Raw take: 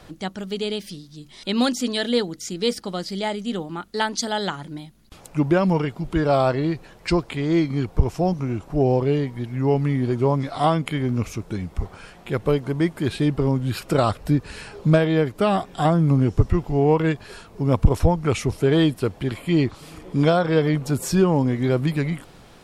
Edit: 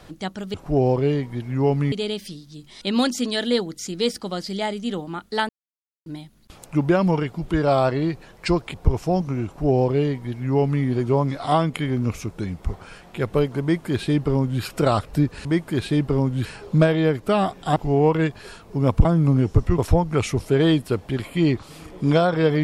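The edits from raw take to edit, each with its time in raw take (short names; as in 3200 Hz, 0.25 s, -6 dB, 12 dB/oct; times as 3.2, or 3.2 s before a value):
4.11–4.68 mute
7.36–7.86 cut
8.58–9.96 copy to 0.54
12.74–13.74 copy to 14.57
15.88–16.61 move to 17.9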